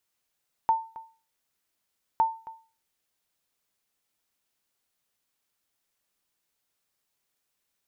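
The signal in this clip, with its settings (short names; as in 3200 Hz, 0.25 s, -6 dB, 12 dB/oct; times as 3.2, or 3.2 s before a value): sonar ping 898 Hz, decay 0.36 s, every 1.51 s, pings 2, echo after 0.27 s, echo -18.5 dB -15 dBFS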